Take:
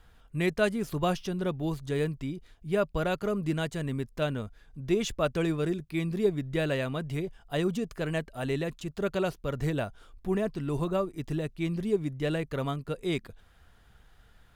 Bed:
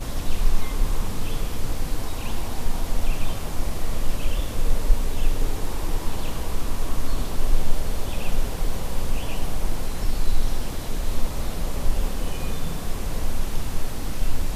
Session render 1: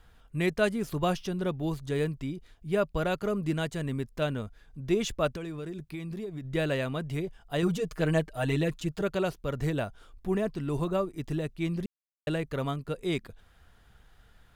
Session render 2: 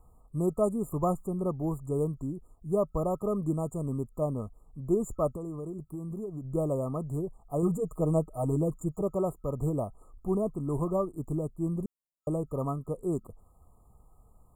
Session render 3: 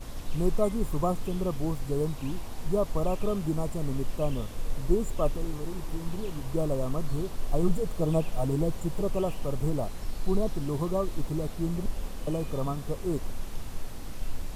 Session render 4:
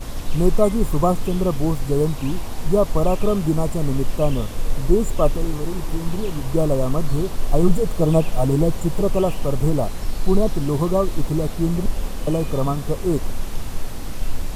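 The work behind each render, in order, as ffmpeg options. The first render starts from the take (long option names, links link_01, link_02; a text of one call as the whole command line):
ffmpeg -i in.wav -filter_complex "[0:a]asettb=1/sr,asplit=3[link_01][link_02][link_03];[link_01]atrim=end=5.334[link_04];[link_02]atrim=start=5.33:end=6.45,asetpts=PTS-STARTPTS,afade=type=in:duration=0.004:curve=qsin,afade=type=out:start_time=1.116:duration=0.004:curve=qsin,acompressor=threshold=-33dB:ratio=10:attack=3.2:release=140:knee=1:detection=peak[link_05];[link_03]atrim=start=6.446[link_06];[link_04][link_05]acrossfade=duration=0.004:curve1=hsin:curve2=qsin[link_07];[link_07][link_06]acrossfade=duration=0.004:curve1=qsin:curve2=hsin,asettb=1/sr,asplit=3[link_08][link_09][link_10];[link_08]atrim=end=7.624[link_11];[link_09]atrim=start=7.62:end=9.02,asetpts=PTS-STARTPTS,afade=type=in:duration=0.004:curve=qsin,afade=type=out:start_time=1.396:duration=0.004:curve=qsin,aecho=1:1:6.4:0.95,atrim=end_sample=61740[link_12];[link_10]atrim=start=9.016[link_13];[link_11][link_12]acrossfade=duration=0.004:curve1=hsin:curve2=qsin[link_14];[link_14][link_13]acrossfade=duration=0.004:curve1=qsin:curve2=hsin,asplit=3[link_15][link_16][link_17];[link_15]atrim=end=11.86,asetpts=PTS-STARTPTS,afade=type=out:start_time=11.856:duration=0.004:curve=hsin[link_18];[link_16]atrim=start=11.86:end=12.27,asetpts=PTS-STARTPTS,volume=0[link_19];[link_17]atrim=start=12.27,asetpts=PTS-STARTPTS,afade=type=in:duration=0.004:curve=hsin[link_20];[link_18][link_19][link_20]concat=n=3:v=0:a=1" out.wav
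ffmpeg -i in.wav -af "afftfilt=real='re*(1-between(b*sr/4096,1300,6900))':imag='im*(1-between(b*sr/4096,1300,6900))':win_size=4096:overlap=0.75" out.wav
ffmpeg -i in.wav -i bed.wav -filter_complex "[1:a]volume=-10.5dB[link_01];[0:a][link_01]amix=inputs=2:normalize=0" out.wav
ffmpeg -i in.wav -af "volume=9.5dB,alimiter=limit=-3dB:level=0:latency=1" out.wav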